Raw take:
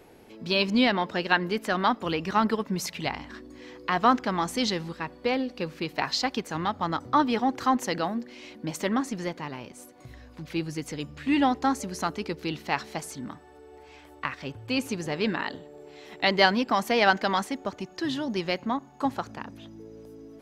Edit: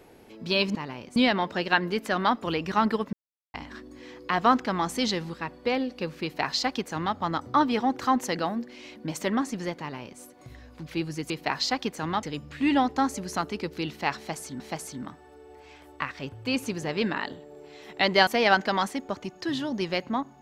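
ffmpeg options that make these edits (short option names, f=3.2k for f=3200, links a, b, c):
-filter_complex "[0:a]asplit=9[a][b][c][d][e][f][g][h][i];[a]atrim=end=0.752[j];[b]atrim=start=9.378:end=9.792[k];[c]atrim=start=0.748:end=2.72,asetpts=PTS-STARTPTS,afade=t=out:st=1.968:d=0.004:c=hsin[l];[d]atrim=start=2.72:end=3.13,asetpts=PTS-STARTPTS,volume=0[m];[e]atrim=start=3.13:end=10.892,asetpts=PTS-STARTPTS,afade=t=in:d=0.004:c=hsin[n];[f]atrim=start=5.818:end=6.752[o];[g]atrim=start=10.888:end=13.262[p];[h]atrim=start=12.828:end=16.502[q];[i]atrim=start=16.828[r];[j][k]acrossfade=d=0.004:c1=hsin:c2=hsin[s];[l][m][n]concat=n=3:v=0:a=1[t];[s][t]acrossfade=d=0.004:c1=hsin:c2=hsin[u];[u][o]acrossfade=d=0.004:c1=hsin:c2=hsin[v];[v][p]acrossfade=d=0.004:c1=hsin:c2=hsin[w];[w][q]acrossfade=d=0.004:c1=hsin:c2=hsin[x];[x][r]acrossfade=d=0.004:c1=hsin:c2=hsin"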